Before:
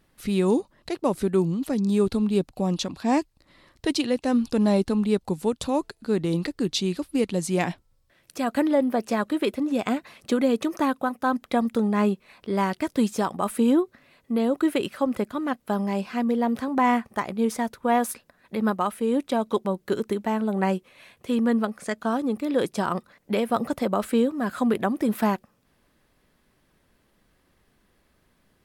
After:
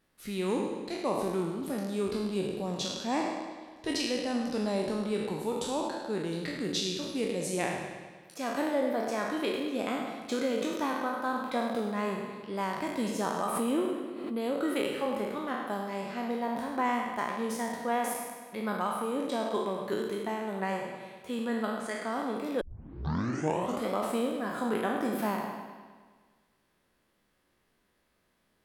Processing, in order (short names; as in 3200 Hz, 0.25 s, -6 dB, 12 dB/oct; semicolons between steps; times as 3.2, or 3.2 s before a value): spectral trails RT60 1.04 s; low shelf 180 Hz -8.5 dB; analogue delay 0.103 s, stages 4096, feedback 64%, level -10.5 dB; 13.27–14.53 backwards sustainer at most 43 dB/s; 22.61 tape start 1.29 s; gain -8.5 dB